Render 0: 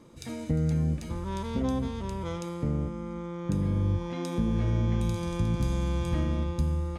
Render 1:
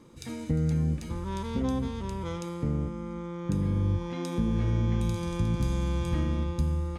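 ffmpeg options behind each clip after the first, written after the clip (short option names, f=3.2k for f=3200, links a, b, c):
-af "equalizer=f=640:t=o:w=0.28:g=-6.5"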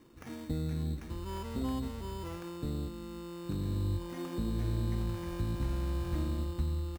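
-filter_complex "[0:a]aecho=1:1:2.9:0.41,acrusher=samples=11:mix=1:aa=0.000001,acrossover=split=1500[a][b];[b]aeval=exprs='0.0126*(abs(mod(val(0)/0.0126+3,4)-2)-1)':c=same[c];[a][c]amix=inputs=2:normalize=0,volume=-6dB"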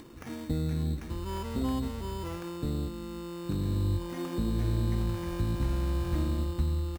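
-af "acompressor=mode=upward:threshold=-47dB:ratio=2.5,volume=4dB"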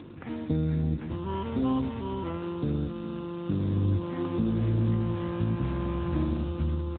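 -af "aeval=exprs='val(0)+0.00398*(sin(2*PI*50*n/s)+sin(2*PI*2*50*n/s)/2+sin(2*PI*3*50*n/s)/3+sin(2*PI*4*50*n/s)/4+sin(2*PI*5*50*n/s)/5)':c=same,aecho=1:1:408:0.178,volume=4.5dB" -ar 8000 -c:a libopencore_amrnb -b:a 10200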